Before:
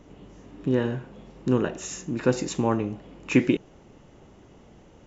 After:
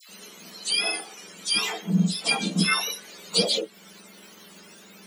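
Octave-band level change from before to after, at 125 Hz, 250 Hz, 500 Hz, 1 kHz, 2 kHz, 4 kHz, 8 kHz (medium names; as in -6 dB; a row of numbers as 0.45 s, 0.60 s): -0.5 dB, -3.5 dB, -6.0 dB, +1.0 dB, +7.0 dB, +18.5 dB, no reading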